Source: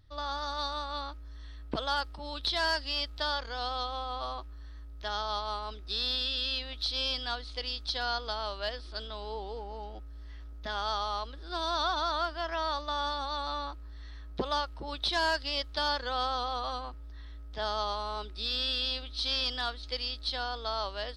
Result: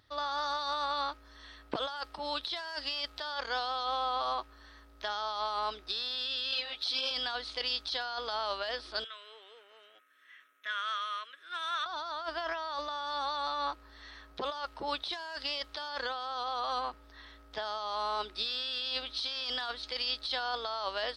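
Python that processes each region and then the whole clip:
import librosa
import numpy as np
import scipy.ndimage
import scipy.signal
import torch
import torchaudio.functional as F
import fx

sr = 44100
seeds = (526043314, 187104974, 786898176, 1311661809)

y = fx.chain(x, sr, fx.highpass(hz=77.0, slope=12),
    fx.ensemble(), at=(6.51, 7.11))
y = fx.chain(y, sr, fx.highpass(hz=1100.0, slope=12),
    fx.fixed_phaser(hz=2000.0, stages=4), at=(9.04, 11.86))
y = fx.highpass(y, sr, hz=850.0, slope=6)
y = fx.high_shelf(y, sr, hz=2900.0, db=-6.5)
y = fx.over_compress(y, sr, threshold_db=-41.0, ratio=-1.0)
y = y * 10.0 ** (6.0 / 20.0)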